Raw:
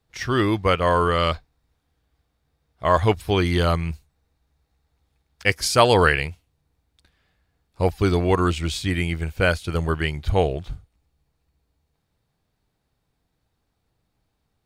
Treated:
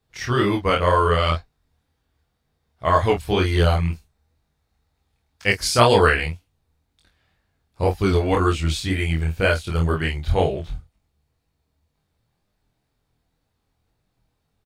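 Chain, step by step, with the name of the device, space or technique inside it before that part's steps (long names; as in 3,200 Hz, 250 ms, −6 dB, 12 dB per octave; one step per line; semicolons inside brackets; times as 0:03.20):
double-tracked vocal (double-tracking delay 25 ms −5 dB; chorus effect 2 Hz, delay 20 ms, depth 6.4 ms)
level +2.5 dB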